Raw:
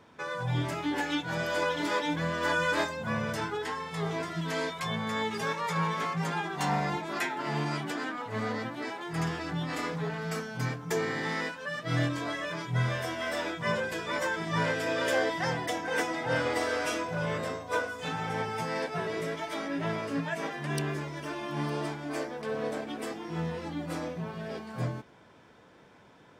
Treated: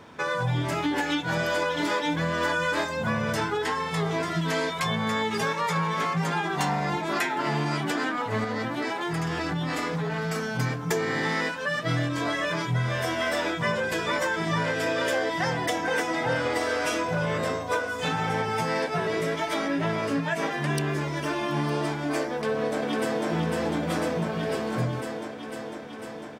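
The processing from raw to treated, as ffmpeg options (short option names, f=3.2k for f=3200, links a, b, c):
-filter_complex "[0:a]asettb=1/sr,asplit=3[a][b][c];[a]atrim=end=8.444[d];[b]atrim=start=8.44:end=10.59,asetpts=PTS-STARTPTS,afade=t=in:d=0.004:c=qsin,afade=t=out:st=2.146:d=0.004:c=qsin,acompressor=threshold=-33dB:ratio=6:attack=3.2:release=140:knee=1:detection=peak[e];[c]atrim=start=10.586[f];[d][e]acrossfade=d=0.004:c1=hsin:c2=qsin[g];[g][f]acrossfade=d=0.004:c1=qsin:c2=hsin,asplit=2[h][i];[i]afade=t=in:st=22.32:d=0.01,afade=t=out:st=23.27:d=0.01,aecho=0:1:500|1000|1500|2000|2500|3000|3500|4000|4500|5000|5500|6000:0.841395|0.631046|0.473285|0.354964|0.266223|0.199667|0.14975|0.112313|0.0842345|0.0631759|0.0473819|0.0355364[j];[h][j]amix=inputs=2:normalize=0,acompressor=threshold=-32dB:ratio=6,volume=9dB"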